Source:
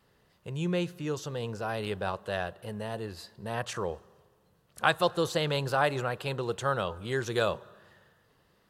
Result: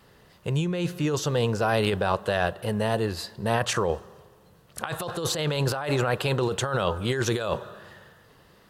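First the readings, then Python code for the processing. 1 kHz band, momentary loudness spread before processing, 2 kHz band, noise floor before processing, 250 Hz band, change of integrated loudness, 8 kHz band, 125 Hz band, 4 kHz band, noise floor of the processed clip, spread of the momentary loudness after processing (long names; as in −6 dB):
+3.0 dB, 11 LU, +2.5 dB, −68 dBFS, +6.5 dB, +5.0 dB, +10.0 dB, +7.5 dB, +5.0 dB, −57 dBFS, 9 LU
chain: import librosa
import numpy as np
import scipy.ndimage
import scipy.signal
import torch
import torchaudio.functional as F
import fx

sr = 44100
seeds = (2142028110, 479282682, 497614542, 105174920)

y = fx.over_compress(x, sr, threshold_db=-33.0, ratio=-1.0)
y = y * 10.0 ** (8.0 / 20.0)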